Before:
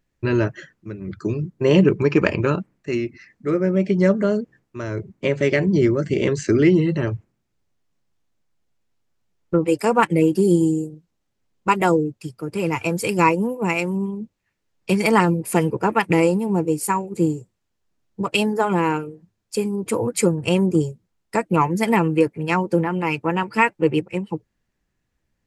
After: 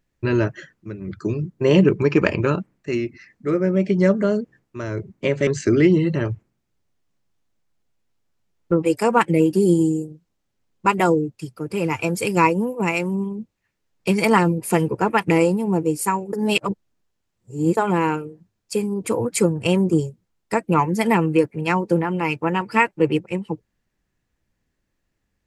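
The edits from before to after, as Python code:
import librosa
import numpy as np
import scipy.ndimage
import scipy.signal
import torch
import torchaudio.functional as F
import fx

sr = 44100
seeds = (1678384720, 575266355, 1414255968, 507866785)

y = fx.edit(x, sr, fx.cut(start_s=5.47, length_s=0.82),
    fx.reverse_span(start_s=17.15, length_s=1.44), tone=tone)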